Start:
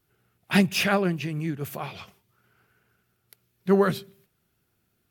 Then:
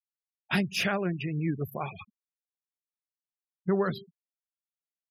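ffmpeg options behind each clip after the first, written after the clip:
-af "afftfilt=real='re*gte(hypot(re,im),0.0224)':imag='im*gte(hypot(re,im),0.0224)':win_size=1024:overlap=0.75,alimiter=limit=-16dB:level=0:latency=1:release=490"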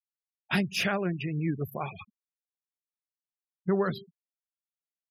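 -af anull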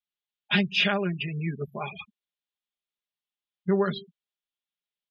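-af "lowpass=f=3.4k:t=q:w=3.2,aecho=1:1:4.9:0.86,volume=-2.5dB"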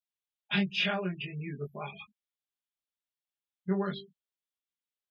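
-af "flanger=delay=19:depth=2.7:speed=0.43,volume=-3dB"

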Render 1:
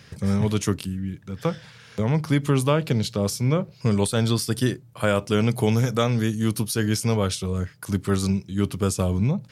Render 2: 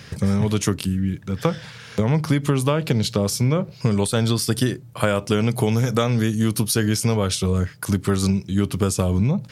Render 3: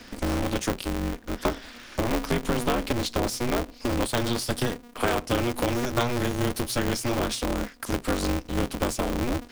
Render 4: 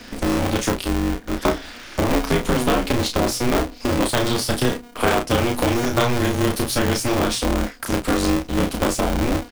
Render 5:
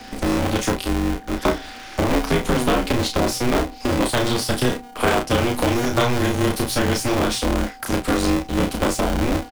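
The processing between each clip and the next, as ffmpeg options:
-af "acompressor=threshold=-23dB:ratio=6,volume=7.5dB"
-filter_complex "[0:a]acrossover=split=170|720|4800[a][b][c][d];[a]alimiter=level_in=1.5dB:limit=-24dB:level=0:latency=1:release=321,volume=-1.5dB[e];[d]aeval=exprs='(tanh(22.4*val(0)+0.25)-tanh(0.25))/22.4':c=same[f];[e][b][c][f]amix=inputs=4:normalize=0,aeval=exprs='val(0)*sgn(sin(2*PI*120*n/s))':c=same,volume=-4dB"
-af "aecho=1:1:32|48:0.596|0.158,volume=5dB"
-filter_complex "[0:a]aeval=exprs='val(0)+0.00891*sin(2*PI*770*n/s)':c=same,acrossover=split=410|1000|5100[a][b][c][d];[c]asplit=2[e][f];[f]adelay=34,volume=-13.5dB[g];[e][g]amix=inputs=2:normalize=0[h];[d]aeval=exprs='clip(val(0),-1,0.0355)':c=same[i];[a][b][h][i]amix=inputs=4:normalize=0"

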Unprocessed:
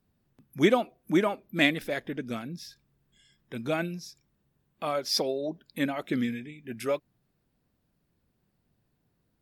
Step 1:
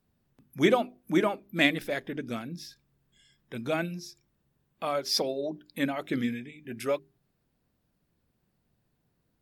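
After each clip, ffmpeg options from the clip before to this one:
-af "bandreject=f=50:t=h:w=6,bandreject=f=100:t=h:w=6,bandreject=f=150:t=h:w=6,bandreject=f=200:t=h:w=6,bandreject=f=250:t=h:w=6,bandreject=f=300:t=h:w=6,bandreject=f=350:t=h:w=6,bandreject=f=400:t=h:w=6"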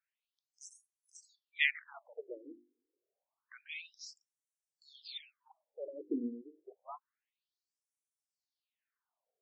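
-af "afftfilt=real='re*between(b*sr/1024,340*pow(7900/340,0.5+0.5*sin(2*PI*0.28*pts/sr))/1.41,340*pow(7900/340,0.5+0.5*sin(2*PI*0.28*pts/sr))*1.41)':imag='im*between(b*sr/1024,340*pow(7900/340,0.5+0.5*sin(2*PI*0.28*pts/sr))/1.41,340*pow(7900/340,0.5+0.5*sin(2*PI*0.28*pts/sr))*1.41)':win_size=1024:overlap=0.75,volume=-4dB"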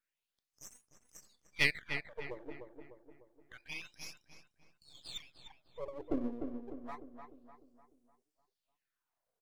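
-filter_complex "[0:a]aeval=exprs='if(lt(val(0),0),0.251*val(0),val(0))':c=same,asplit=2[a][b];[b]adelay=300,lowpass=f=2.1k:p=1,volume=-6dB,asplit=2[c][d];[d]adelay=300,lowpass=f=2.1k:p=1,volume=0.49,asplit=2[e][f];[f]adelay=300,lowpass=f=2.1k:p=1,volume=0.49,asplit=2[g][h];[h]adelay=300,lowpass=f=2.1k:p=1,volume=0.49,asplit=2[i][j];[j]adelay=300,lowpass=f=2.1k:p=1,volume=0.49,asplit=2[k][l];[l]adelay=300,lowpass=f=2.1k:p=1,volume=0.49[m];[c][e][g][i][k][m]amix=inputs=6:normalize=0[n];[a][n]amix=inputs=2:normalize=0,volume=4dB"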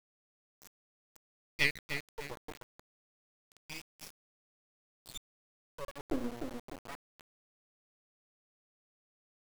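-af "aeval=exprs='val(0)*gte(abs(val(0)),0.0112)':c=same"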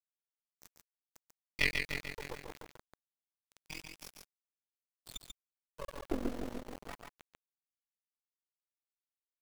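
-af "tremolo=f=44:d=0.889,aecho=1:1:141:0.562,volume=2.5dB"

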